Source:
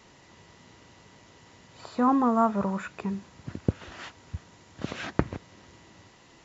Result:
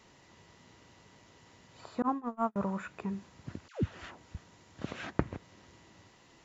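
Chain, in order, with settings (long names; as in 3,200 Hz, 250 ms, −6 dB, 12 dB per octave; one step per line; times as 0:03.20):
0:02.02–0:02.56: noise gate −20 dBFS, range −38 dB
0:03.68–0:04.35: all-pass dispersion lows, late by 148 ms, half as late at 760 Hz
dynamic equaliser 5,000 Hz, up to −4 dB, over −54 dBFS, Q 1
level −5 dB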